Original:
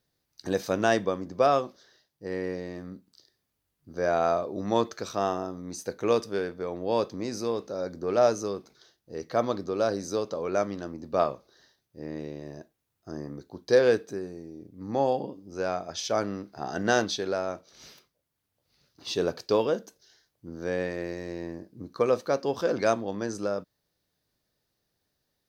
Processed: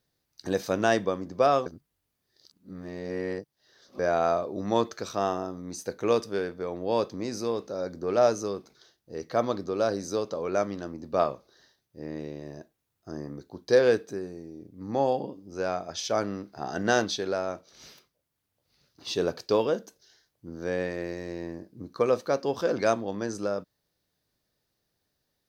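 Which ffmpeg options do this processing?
ffmpeg -i in.wav -filter_complex "[0:a]asplit=3[link_01][link_02][link_03];[link_01]atrim=end=1.662[link_04];[link_02]atrim=start=1.658:end=3.992,asetpts=PTS-STARTPTS,areverse[link_05];[link_03]atrim=start=3.988[link_06];[link_04][link_05]acrossfade=duration=0.004:curve1=hsin:curve2=hsin[link_07];[link_07][link_06]acrossfade=duration=0.004:curve1=hsin:curve2=hsin" out.wav

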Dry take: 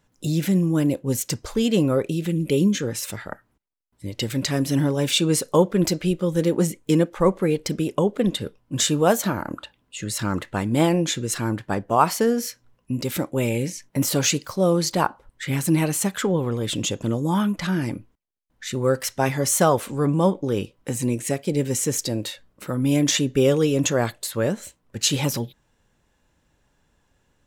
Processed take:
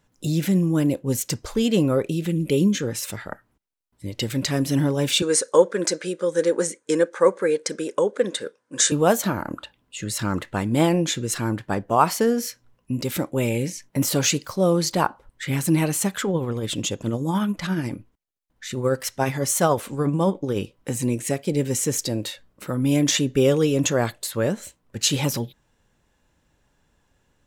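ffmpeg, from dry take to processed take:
ffmpeg -i in.wav -filter_complex "[0:a]asettb=1/sr,asplit=3[link_01][link_02][link_03];[link_01]atrim=end=5.224[link_04];[link_02]atrim=start=5.22:end=8.92,asetpts=PTS-STARTPTS,afade=type=in:duration=0.004:curve=qsin,afade=type=out:start_time=3.696:duration=0.004:curve=qsin,highpass=380,equalizer=frequency=500:width_type=q:width=4:gain=7,equalizer=frequency=710:width_type=q:width=4:gain=-7,equalizer=frequency=1600:width_type=q:width=4:gain=9,equalizer=frequency=2900:width_type=q:width=4:gain=-6,equalizer=frequency=6300:width_type=q:width=4:gain=5,equalizer=frequency=9000:width_type=q:width=4:gain=9,lowpass=frequency=9100:width=0.5412,lowpass=frequency=9100:width=1.3066[link_05];[link_03]atrim=start=8.916[link_06];[link_04][link_05]acrossfade=duration=0.004:curve1=hsin:curve2=qsin[link_07];[link_07][link_06]acrossfade=duration=0.004:curve1=qsin:curve2=hsin,asettb=1/sr,asplit=3[link_08][link_09][link_10];[link_08]atrim=end=16.224[link_11];[link_09]atrim=start=16.22:end=20.56,asetpts=PTS-STARTPTS,afade=type=in:duration=0.004:curve=qsin,afade=type=out:start_time=4.336:duration=0.004:curve=qsin,tremolo=f=14:d=0.36[link_12];[link_10]atrim=start=20.556[link_13];[link_11][link_12]acrossfade=duration=0.004:curve1=hsin:curve2=qsin[link_14];[link_14][link_13]acrossfade=duration=0.004:curve1=qsin:curve2=hsin" out.wav

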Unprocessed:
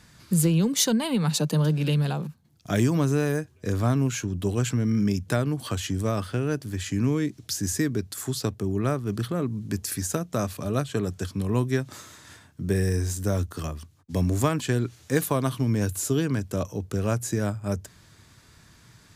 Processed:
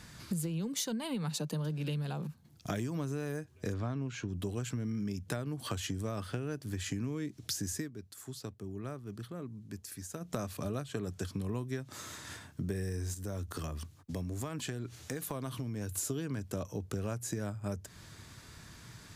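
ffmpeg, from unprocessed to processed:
ffmpeg -i in.wav -filter_complex "[0:a]asettb=1/sr,asplit=3[link_01][link_02][link_03];[link_01]atrim=end=3.744[link_04];[link_02]atrim=start=3.74:end=4.29,asetpts=PTS-STARTPTS,afade=type=in:duration=0.004:curve=qsin,afade=type=out:start_time=0.546:duration=0.004:curve=qsin,lowpass=4500[link_05];[link_03]atrim=start=4.286[link_06];[link_04][link_05]acrossfade=duration=0.004:curve1=hsin:curve2=qsin[link_07];[link_07][link_06]acrossfade=duration=0.004:curve1=qsin:curve2=hsin,asettb=1/sr,asplit=3[link_08][link_09][link_10];[link_08]atrim=end=13.144[link_11];[link_09]atrim=start=13.14:end=15.98,asetpts=PTS-STARTPTS,afade=type=in:duration=0.004:curve=qsin,afade=type=out:start_time=2.836:duration=0.004:curve=qsin,acompressor=threshold=-39dB:ratio=2.5:attack=3.2:release=140:knee=1:detection=peak[link_12];[link_10]atrim=start=15.976[link_13];[link_11][link_12]acrossfade=duration=0.004:curve1=hsin:curve2=qsin[link_14];[link_14][link_13]acrossfade=duration=0.004:curve1=qsin:curve2=hsin,asplit=3[link_15][link_16][link_17];[link_15]atrim=end=7.91,asetpts=PTS-STARTPTS,afade=type=out:start_time=7.72:duration=0.19:silence=0.141254[link_18];[link_16]atrim=start=7.91:end=10.2,asetpts=PTS-STARTPTS,volume=-17dB[link_19];[link_17]atrim=start=10.2,asetpts=PTS-STARTPTS,afade=type=in:duration=0.19:silence=0.141254[link_20];[link_18][link_19][link_20]concat=n=3:v=0:a=1,acompressor=threshold=-36dB:ratio=6,volume=2dB" out.wav

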